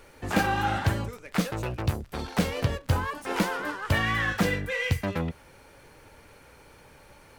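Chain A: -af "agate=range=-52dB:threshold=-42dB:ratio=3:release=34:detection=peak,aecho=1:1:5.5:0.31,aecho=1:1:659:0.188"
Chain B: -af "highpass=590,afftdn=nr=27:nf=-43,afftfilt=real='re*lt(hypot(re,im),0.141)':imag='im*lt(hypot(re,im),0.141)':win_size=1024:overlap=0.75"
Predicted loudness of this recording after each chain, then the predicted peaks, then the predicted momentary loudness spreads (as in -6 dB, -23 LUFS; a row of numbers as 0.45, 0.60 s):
-28.0, -35.0 LUFS; -9.0, -18.0 dBFS; 11, 7 LU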